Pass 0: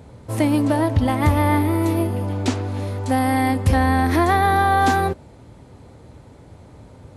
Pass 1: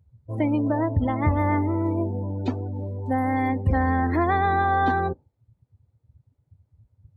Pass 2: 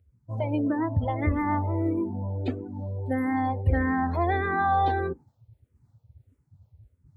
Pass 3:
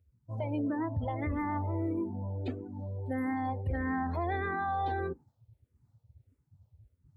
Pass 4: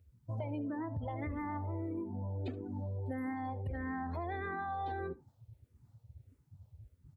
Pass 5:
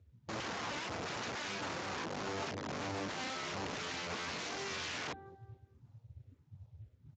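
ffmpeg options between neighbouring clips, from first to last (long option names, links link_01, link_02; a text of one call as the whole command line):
ffmpeg -i in.wav -af "afftdn=noise_reduction=31:noise_floor=-26,volume=-4.5dB" out.wav
ffmpeg -i in.wav -filter_complex "[0:a]areverse,acompressor=mode=upward:threshold=-44dB:ratio=2.5,areverse,asplit=2[link_01][link_02];[link_02]afreqshift=-1.6[link_03];[link_01][link_03]amix=inputs=2:normalize=1" out.wav
ffmpeg -i in.wav -af "alimiter=limit=-19.5dB:level=0:latency=1:release=20,volume=-5.5dB" out.wav
ffmpeg -i in.wav -af "acompressor=threshold=-41dB:ratio=6,aecho=1:1:74:0.0944,volume=4.5dB" out.wav
ffmpeg -i in.wav -af "aecho=1:1:221|442|663:0.112|0.0359|0.0115,aeval=exprs='(mod(79.4*val(0)+1,2)-1)/79.4':channel_layout=same,volume=3dB" -ar 16000 -c:a libspeex -b:a 34k out.spx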